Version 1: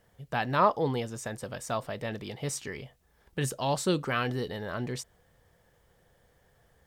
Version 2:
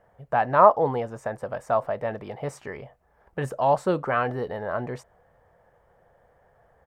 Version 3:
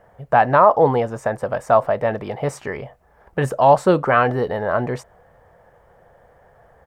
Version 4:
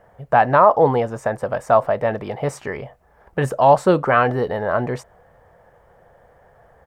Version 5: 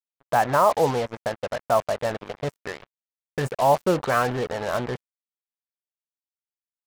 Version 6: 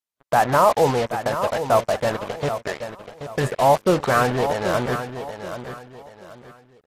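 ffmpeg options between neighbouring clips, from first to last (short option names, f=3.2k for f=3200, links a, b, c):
-af "firequalizer=gain_entry='entry(310,0);entry(630,11);entry(3500,-12)':delay=0.05:min_phase=1"
-af "alimiter=level_in=9.5dB:limit=-1dB:release=50:level=0:latency=1,volume=-1dB"
-af anull
-af "acrusher=bits=3:mix=0:aa=0.5,volume=-6dB"
-filter_complex "[0:a]asplit=2[a][b];[b]asoftclip=type=tanh:threshold=-22dB,volume=-8.5dB[c];[a][c]amix=inputs=2:normalize=0,aecho=1:1:780|1560|2340:0.316|0.098|0.0304,volume=1.5dB" -ar 32000 -c:a aac -b:a 48k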